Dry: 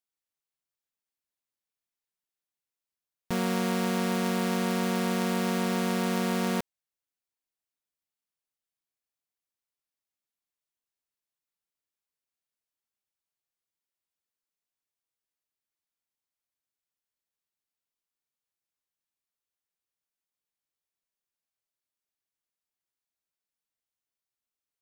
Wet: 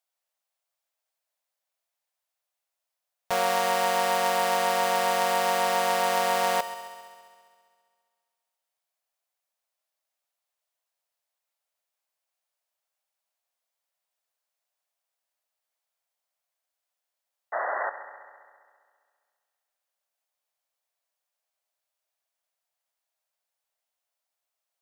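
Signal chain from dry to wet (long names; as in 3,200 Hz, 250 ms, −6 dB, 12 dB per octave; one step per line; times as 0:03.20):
sound drawn into the spectrogram noise, 0:17.52–0:17.90, 260–2,000 Hz −37 dBFS
low shelf with overshoot 420 Hz −14 dB, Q 3
echo machine with several playback heads 67 ms, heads first and second, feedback 69%, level −16.5 dB
level +5 dB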